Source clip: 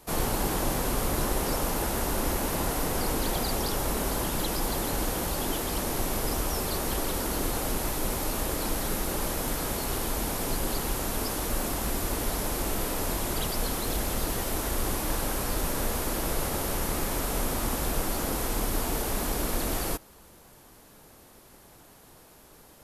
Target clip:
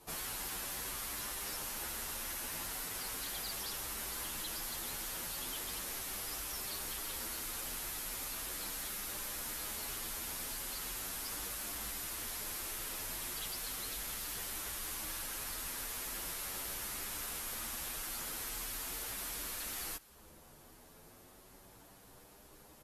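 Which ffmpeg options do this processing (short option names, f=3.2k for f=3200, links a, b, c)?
-filter_complex "[0:a]acrossover=split=1300[a][b];[a]acompressor=threshold=-41dB:ratio=12[c];[c][b]amix=inputs=2:normalize=0,asoftclip=type=tanh:threshold=-29.5dB,aresample=32000,aresample=44100,asplit=2[d][e];[e]adelay=8.9,afreqshift=0.38[f];[d][f]amix=inputs=2:normalize=1,volume=-2dB"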